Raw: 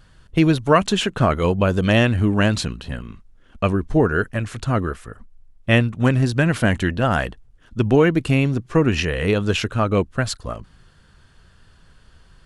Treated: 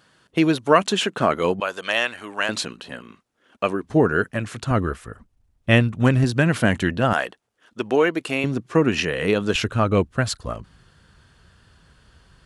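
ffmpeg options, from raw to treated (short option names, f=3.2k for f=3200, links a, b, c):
-af "asetnsamples=n=441:p=0,asendcmd='1.6 highpass f 810;2.49 highpass f 310;3.84 highpass f 130;4.71 highpass f 48;6.24 highpass f 110;7.13 highpass f 400;8.44 highpass f 170;9.55 highpass f 48',highpass=240"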